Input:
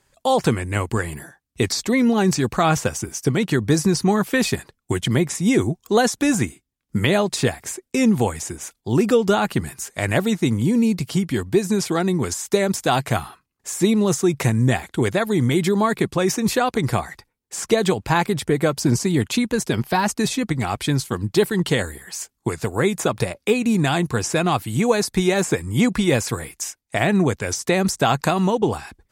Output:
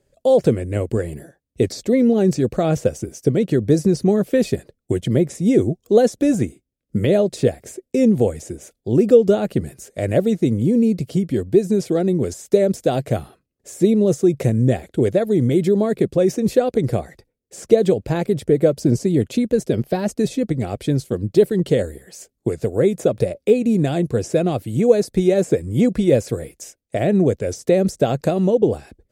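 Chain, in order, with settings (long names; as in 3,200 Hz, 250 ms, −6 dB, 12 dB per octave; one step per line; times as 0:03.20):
low shelf with overshoot 730 Hz +9 dB, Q 3
level −8.5 dB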